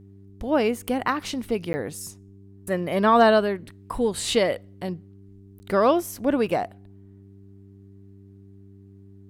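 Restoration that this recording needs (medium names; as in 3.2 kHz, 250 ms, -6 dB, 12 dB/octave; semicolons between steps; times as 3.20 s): de-hum 98.2 Hz, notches 4; interpolate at 1.73/5.59 s, 10 ms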